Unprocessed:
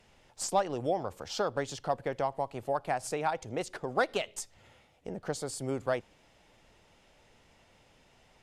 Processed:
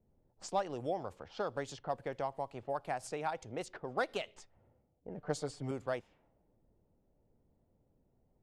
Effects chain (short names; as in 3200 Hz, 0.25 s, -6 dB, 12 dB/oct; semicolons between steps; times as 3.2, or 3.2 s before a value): low-pass opened by the level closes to 350 Hz, open at -29.5 dBFS; 5.17–5.71 comb 6.7 ms, depth 95%; gain -6 dB